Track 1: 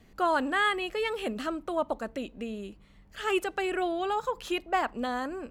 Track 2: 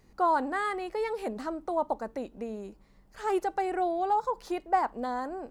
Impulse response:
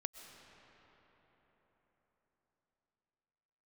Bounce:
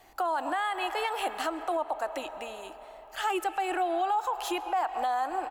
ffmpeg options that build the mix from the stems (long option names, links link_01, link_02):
-filter_complex "[0:a]highpass=frequency=780:width_type=q:width=4.9,highshelf=frequency=7800:gain=10.5,volume=-1dB,asplit=2[link_01][link_02];[link_02]volume=-3.5dB[link_03];[1:a]lowpass=frequency=320:width_type=q:width=3.7,aecho=1:1:2.3:0.6,volume=-9dB,asplit=2[link_04][link_05];[link_05]apad=whole_len=242816[link_06];[link_01][link_06]sidechaincompress=threshold=-36dB:ratio=8:attack=16:release=407[link_07];[2:a]atrim=start_sample=2205[link_08];[link_03][link_08]afir=irnorm=-1:irlink=0[link_09];[link_07][link_04][link_09]amix=inputs=3:normalize=0,alimiter=limit=-21dB:level=0:latency=1:release=124"